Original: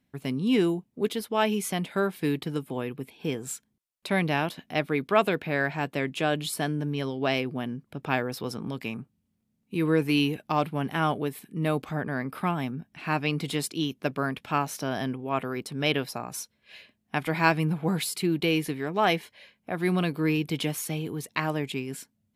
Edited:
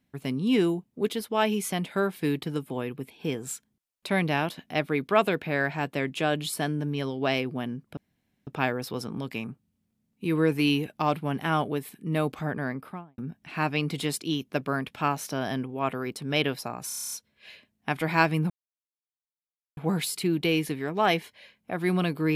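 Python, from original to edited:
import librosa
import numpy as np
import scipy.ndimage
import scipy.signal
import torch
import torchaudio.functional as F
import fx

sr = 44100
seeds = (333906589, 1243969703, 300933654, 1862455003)

y = fx.studio_fade_out(x, sr, start_s=12.1, length_s=0.58)
y = fx.edit(y, sr, fx.insert_room_tone(at_s=7.97, length_s=0.5),
    fx.stutter(start_s=16.38, slice_s=0.03, count=9),
    fx.insert_silence(at_s=17.76, length_s=1.27), tone=tone)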